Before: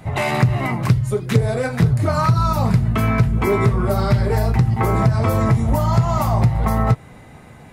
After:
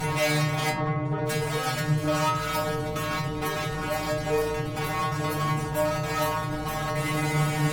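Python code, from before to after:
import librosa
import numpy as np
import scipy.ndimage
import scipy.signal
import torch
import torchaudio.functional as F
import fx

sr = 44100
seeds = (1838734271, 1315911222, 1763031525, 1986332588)

y = fx.over_compress(x, sr, threshold_db=-27.0, ratio=-1.0)
y = fx.rev_schroeder(y, sr, rt60_s=1.7, comb_ms=33, drr_db=14.0)
y = fx.vibrato(y, sr, rate_hz=1.3, depth_cents=17.0)
y = fx.fuzz(y, sr, gain_db=40.0, gate_db=-49.0)
y = fx.lowpass(y, sr, hz=1600.0, slope=12, at=(0.69, 1.25), fade=0.02)
y = fx.stiff_resonator(y, sr, f0_hz=150.0, decay_s=0.57, stiffness=0.002)
y = F.gain(torch.from_numpy(y), 3.5).numpy()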